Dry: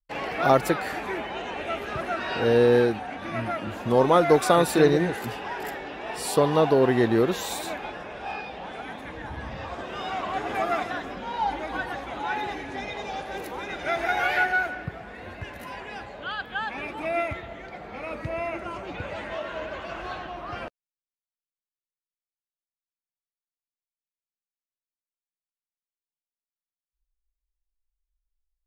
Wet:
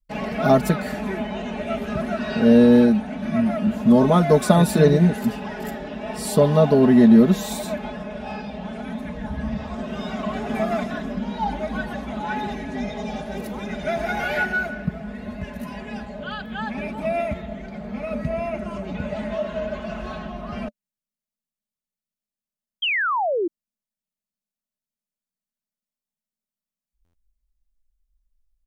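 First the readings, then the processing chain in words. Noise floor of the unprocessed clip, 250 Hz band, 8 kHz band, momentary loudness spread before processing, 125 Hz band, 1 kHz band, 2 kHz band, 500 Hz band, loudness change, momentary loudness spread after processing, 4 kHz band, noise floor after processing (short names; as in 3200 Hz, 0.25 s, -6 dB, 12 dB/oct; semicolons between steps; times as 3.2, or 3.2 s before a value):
under -85 dBFS, +10.5 dB, +1.5 dB, 17 LU, +9.0 dB, -0.5 dB, +0.5 dB, +2.5 dB, +4.5 dB, 17 LU, +2.0 dB, under -85 dBFS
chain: tone controls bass +12 dB, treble +4 dB; comb 4.7 ms, depth 75%; small resonant body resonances 220/590 Hz, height 10 dB, ringing for 40 ms; painted sound fall, 22.82–23.48, 320–3300 Hz -18 dBFS; stuck buffer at 27.04, samples 512, times 8; gain -4 dB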